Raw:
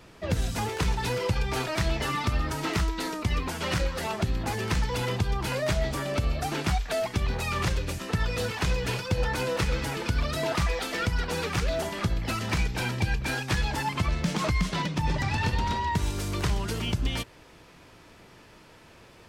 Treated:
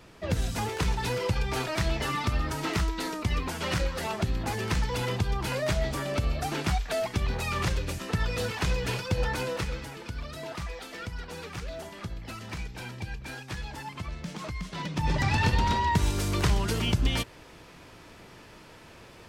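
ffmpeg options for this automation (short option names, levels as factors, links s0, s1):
-af "volume=3.76,afade=t=out:st=9.28:d=0.62:silence=0.354813,afade=t=in:st=14.7:d=0.57:silence=0.237137"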